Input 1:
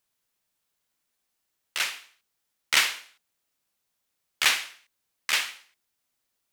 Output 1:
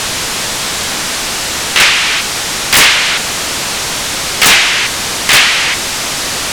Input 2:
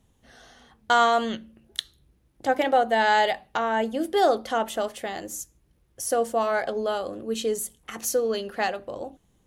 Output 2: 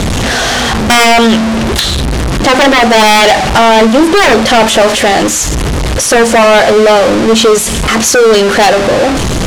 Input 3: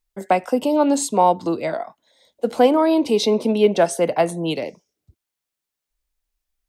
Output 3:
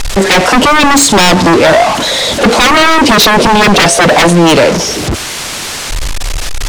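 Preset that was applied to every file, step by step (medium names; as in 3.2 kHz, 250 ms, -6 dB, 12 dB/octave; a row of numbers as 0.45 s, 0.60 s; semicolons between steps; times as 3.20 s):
jump at every zero crossing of -23 dBFS; low-pass 7.4 kHz 12 dB/octave; wavefolder -19 dBFS; peak normalisation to -1.5 dBFS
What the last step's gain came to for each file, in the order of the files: +17.5 dB, +17.5 dB, +17.5 dB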